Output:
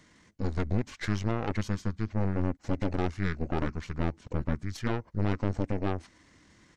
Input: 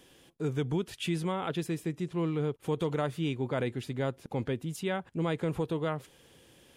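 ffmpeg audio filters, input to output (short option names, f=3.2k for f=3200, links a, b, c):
-af "aeval=exprs='0.1*(cos(1*acos(clip(val(0)/0.1,-1,1)))-cos(1*PI/2))+0.0355*(cos(4*acos(clip(val(0)/0.1,-1,1)))-cos(4*PI/2))':c=same,asetrate=26990,aresample=44100,atempo=1.63392"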